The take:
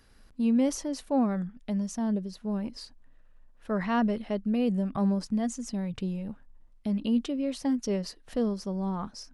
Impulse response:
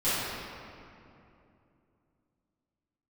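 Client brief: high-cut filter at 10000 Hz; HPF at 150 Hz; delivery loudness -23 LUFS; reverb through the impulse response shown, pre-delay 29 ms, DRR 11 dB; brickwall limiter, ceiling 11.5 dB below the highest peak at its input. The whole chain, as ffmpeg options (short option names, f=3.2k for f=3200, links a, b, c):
-filter_complex "[0:a]highpass=150,lowpass=10k,alimiter=level_in=4.5dB:limit=-24dB:level=0:latency=1,volume=-4.5dB,asplit=2[a][b];[1:a]atrim=start_sample=2205,adelay=29[c];[b][c]afir=irnorm=-1:irlink=0,volume=-24dB[d];[a][d]amix=inputs=2:normalize=0,volume=13dB"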